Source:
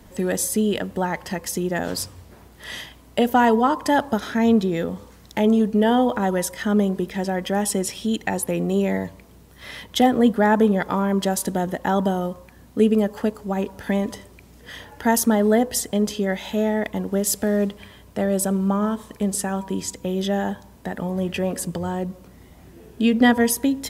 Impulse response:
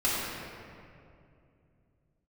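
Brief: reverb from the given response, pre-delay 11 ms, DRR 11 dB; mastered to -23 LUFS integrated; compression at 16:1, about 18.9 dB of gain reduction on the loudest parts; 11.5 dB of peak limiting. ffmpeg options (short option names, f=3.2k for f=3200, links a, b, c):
-filter_complex "[0:a]acompressor=threshold=-31dB:ratio=16,alimiter=level_in=4dB:limit=-24dB:level=0:latency=1,volume=-4dB,asplit=2[a][b];[1:a]atrim=start_sample=2205,adelay=11[c];[b][c]afir=irnorm=-1:irlink=0,volume=-23dB[d];[a][d]amix=inputs=2:normalize=0,volume=14.5dB"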